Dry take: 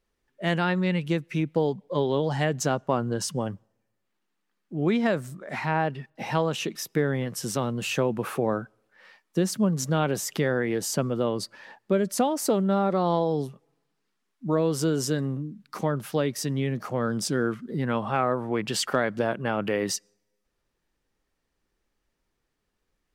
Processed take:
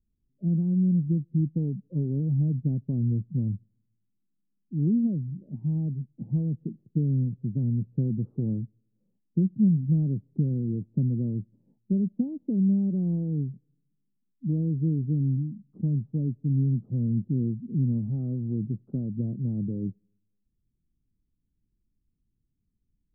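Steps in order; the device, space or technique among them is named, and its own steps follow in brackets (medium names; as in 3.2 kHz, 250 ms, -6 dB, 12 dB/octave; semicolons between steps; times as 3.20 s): the neighbour's flat through the wall (low-pass 250 Hz 24 dB/octave; peaking EQ 110 Hz +5 dB 0.77 oct); trim +3 dB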